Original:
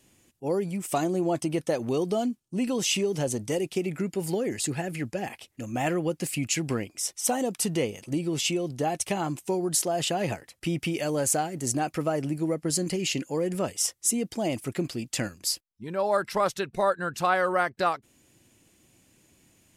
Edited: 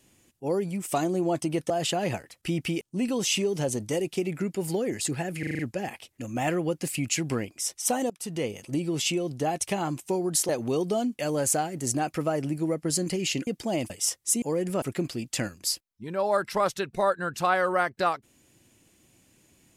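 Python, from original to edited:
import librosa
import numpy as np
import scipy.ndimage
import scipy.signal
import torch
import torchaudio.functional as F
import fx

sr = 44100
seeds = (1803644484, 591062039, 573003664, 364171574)

y = fx.edit(x, sr, fx.swap(start_s=1.7, length_s=0.7, other_s=9.88, other_length_s=1.11),
    fx.stutter(start_s=4.98, slice_s=0.04, count=6),
    fx.fade_in_from(start_s=7.49, length_s=0.47, floor_db=-19.5),
    fx.swap(start_s=13.27, length_s=0.4, other_s=14.19, other_length_s=0.43), tone=tone)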